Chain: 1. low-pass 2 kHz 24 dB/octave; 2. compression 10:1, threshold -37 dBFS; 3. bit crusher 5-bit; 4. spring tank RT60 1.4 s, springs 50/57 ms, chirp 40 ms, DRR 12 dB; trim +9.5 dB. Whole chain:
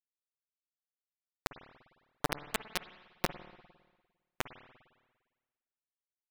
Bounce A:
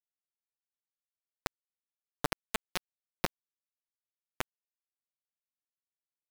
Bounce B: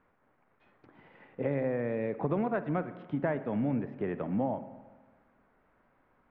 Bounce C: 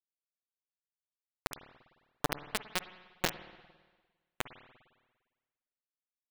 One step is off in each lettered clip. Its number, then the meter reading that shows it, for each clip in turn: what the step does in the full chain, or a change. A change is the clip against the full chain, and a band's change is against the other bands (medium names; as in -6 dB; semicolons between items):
4, momentary loudness spread change -13 LU; 3, crest factor change -13.5 dB; 1, 8 kHz band +2.5 dB